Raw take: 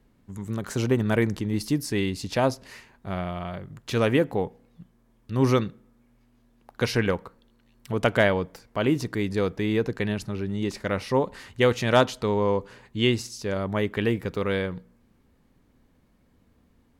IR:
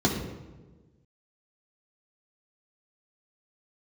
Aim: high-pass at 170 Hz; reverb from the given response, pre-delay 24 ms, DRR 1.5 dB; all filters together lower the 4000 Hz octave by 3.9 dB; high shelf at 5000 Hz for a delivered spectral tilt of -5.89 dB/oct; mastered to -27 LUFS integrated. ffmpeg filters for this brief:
-filter_complex "[0:a]highpass=170,equalizer=f=4k:t=o:g=-8,highshelf=f=5k:g=5.5,asplit=2[a][b];[1:a]atrim=start_sample=2205,adelay=24[c];[b][c]afir=irnorm=-1:irlink=0,volume=-15dB[d];[a][d]amix=inputs=2:normalize=0,volume=-7.5dB"

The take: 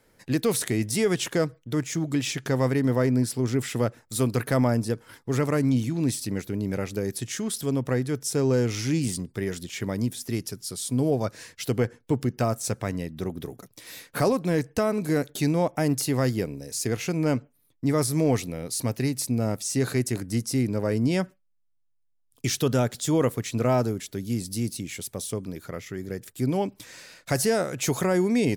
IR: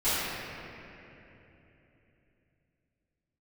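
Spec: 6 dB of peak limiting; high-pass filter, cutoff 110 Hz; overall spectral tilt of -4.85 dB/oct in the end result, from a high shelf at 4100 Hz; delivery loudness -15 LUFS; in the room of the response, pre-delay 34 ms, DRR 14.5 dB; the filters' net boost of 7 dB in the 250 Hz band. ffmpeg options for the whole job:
-filter_complex "[0:a]highpass=110,equalizer=f=250:t=o:g=8.5,highshelf=f=4.1k:g=9,alimiter=limit=-10.5dB:level=0:latency=1,asplit=2[a][b];[1:a]atrim=start_sample=2205,adelay=34[c];[b][c]afir=irnorm=-1:irlink=0,volume=-28.5dB[d];[a][d]amix=inputs=2:normalize=0,volume=7.5dB"

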